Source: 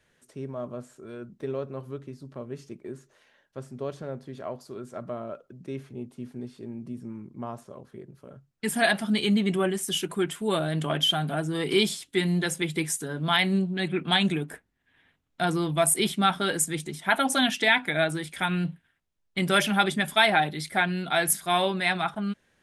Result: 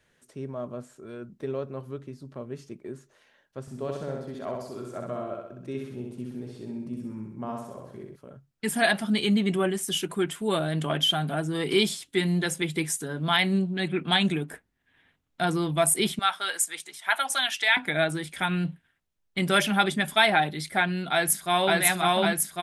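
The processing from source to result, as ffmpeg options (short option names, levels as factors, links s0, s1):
-filter_complex "[0:a]asettb=1/sr,asplit=3[s0][s1][s2];[s0]atrim=end=3.614[s3];[s1]atrim=start=3.61:end=8.16,asetpts=PTS-STARTPTS,afade=t=in:d=0.004:c=qsin,afade=t=out:st=4.546:d=0.004:c=qsin,aecho=1:1:64|128|192|256|320|384|448:0.708|0.375|0.199|0.105|0.0559|0.0296|0.0157,atrim=end_sample=200655[s4];[s2]atrim=start=8.156[s5];[s3][s4]acrossfade=d=0.004:c1=hsin:c2=qsin[s6];[s6][s5]acrossfade=d=0.004:c1=qsin:c2=hsin,asettb=1/sr,asplit=3[s7][s8][s9];[s7]atrim=end=16.194[s10];[s8]atrim=start=16.19:end=17.77,asetpts=PTS-STARTPTS,afade=t=in:d=0.004:c=qsin,afade=t=out:st=1.576:d=0.004:c=qsin,highpass=930[s11];[s9]atrim=start=17.766[s12];[s10][s11]acrossfade=d=0.004:c1=hsin:c2=qsin[s13];[s13][s12]acrossfade=d=0.004:c1=qsin:c2=hsin,asplit=2[s14][s15];[s15]afade=t=in:st=21.12:d=0.01,afade=t=out:st=21.71:d=0.01,aecho=0:1:550|1100|1650|2200|2750|3300|3850|4400|4950|5500|6050|6600:1|0.75|0.5625|0.421875|0.316406|0.237305|0.177979|0.133484|0.100113|0.0750847|0.0563135|0.0422351[s16];[s14][s16]amix=inputs=2:normalize=0"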